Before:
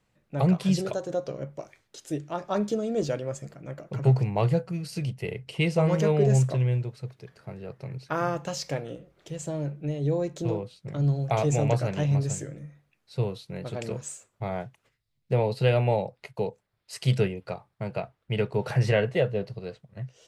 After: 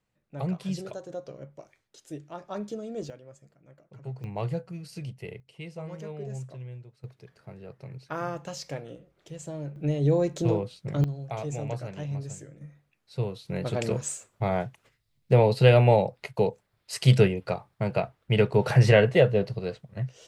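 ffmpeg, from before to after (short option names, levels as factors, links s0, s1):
-af "asetnsamples=n=441:p=0,asendcmd='3.1 volume volume -17dB;4.24 volume volume -7dB;5.4 volume volume -16dB;7.04 volume volume -5dB;9.76 volume volume 3.5dB;11.04 volume volume -9dB;12.61 volume volume -2dB;13.45 volume volume 5dB',volume=0.398"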